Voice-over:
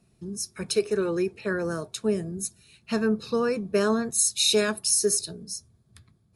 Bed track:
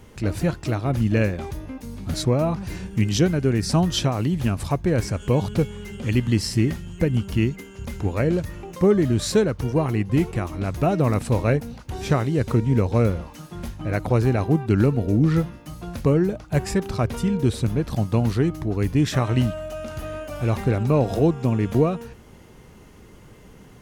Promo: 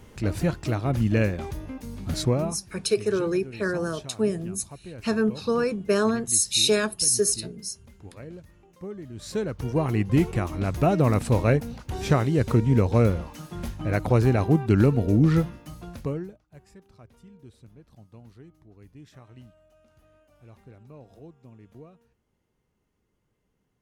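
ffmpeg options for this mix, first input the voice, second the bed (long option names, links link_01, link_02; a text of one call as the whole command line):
ffmpeg -i stem1.wav -i stem2.wav -filter_complex "[0:a]adelay=2150,volume=1dB[link_01];[1:a]volume=17.5dB,afade=type=out:start_time=2.29:duration=0.33:silence=0.125893,afade=type=in:start_time=9.13:duration=0.92:silence=0.105925,afade=type=out:start_time=15.33:duration=1.06:silence=0.0421697[link_02];[link_01][link_02]amix=inputs=2:normalize=0" out.wav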